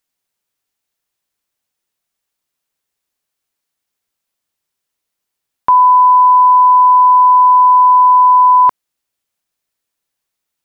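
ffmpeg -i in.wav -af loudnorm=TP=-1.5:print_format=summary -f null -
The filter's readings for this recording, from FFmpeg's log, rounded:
Input Integrated:     -7.7 LUFS
Input True Peak:      -4.0 dBTP
Input LRA:             4.6 LU
Input Threshold:     -17.8 LUFS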